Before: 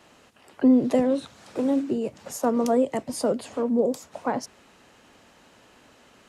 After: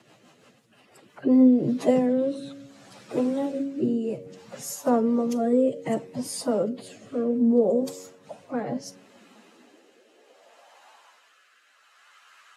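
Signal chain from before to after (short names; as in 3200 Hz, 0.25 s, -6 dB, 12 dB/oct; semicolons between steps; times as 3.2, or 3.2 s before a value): high-pass sweep 130 Hz -> 1300 Hz, 4.41–5.7; de-hum 92.55 Hz, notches 6; plain phase-vocoder stretch 2×; rotary speaker horn 6 Hz, later 0.65 Hz, at 0.94; gain +1.5 dB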